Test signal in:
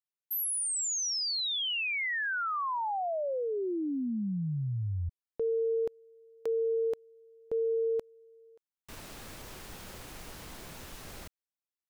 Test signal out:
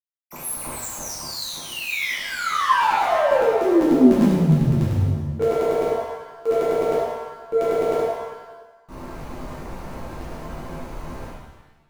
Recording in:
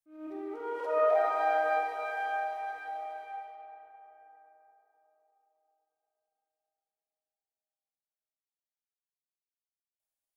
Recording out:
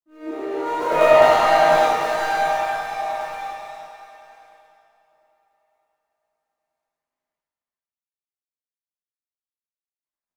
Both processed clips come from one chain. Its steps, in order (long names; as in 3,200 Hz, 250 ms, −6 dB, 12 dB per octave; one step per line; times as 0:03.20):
running median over 25 samples
thirty-one-band graphic EQ 400 Hz −7 dB, 1,000 Hz +5 dB, 2,000 Hz +3 dB, 3,150 Hz −9 dB
leveller curve on the samples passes 1
dynamic equaliser 250 Hz, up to +5 dB, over −44 dBFS, Q 0.99
regular buffer underruns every 0.10 s, samples 512, repeat, from 0:00.80
reverb with rising layers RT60 1 s, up +7 semitones, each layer −8 dB, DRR −7.5 dB
level +3 dB